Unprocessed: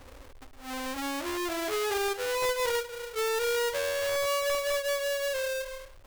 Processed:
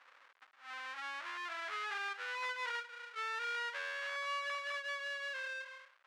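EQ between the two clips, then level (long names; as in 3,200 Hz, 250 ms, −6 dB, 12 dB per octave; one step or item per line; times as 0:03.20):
four-pole ladder band-pass 1,800 Hz, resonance 30%
+5.5 dB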